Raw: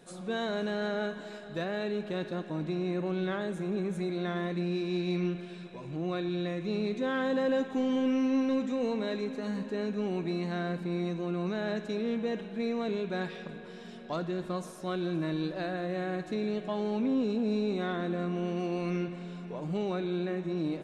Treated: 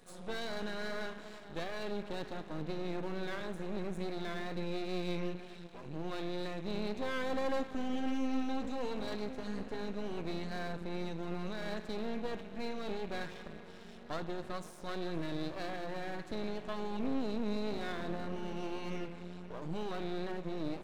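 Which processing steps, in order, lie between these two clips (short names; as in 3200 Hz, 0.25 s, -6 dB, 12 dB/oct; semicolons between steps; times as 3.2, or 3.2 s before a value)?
wow and flutter 26 cents; half-wave rectifier; gain -1 dB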